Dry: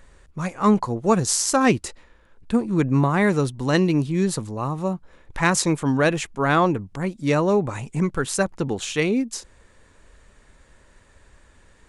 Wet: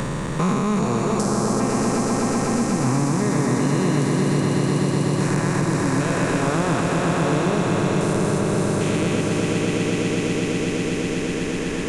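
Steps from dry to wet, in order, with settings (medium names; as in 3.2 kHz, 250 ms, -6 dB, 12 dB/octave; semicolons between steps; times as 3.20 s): spectrogram pixelated in time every 400 ms; transient shaper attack -10 dB, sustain +3 dB; on a send: echo with a slow build-up 124 ms, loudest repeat 5, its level -5 dB; on the sum: three bands compressed up and down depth 100%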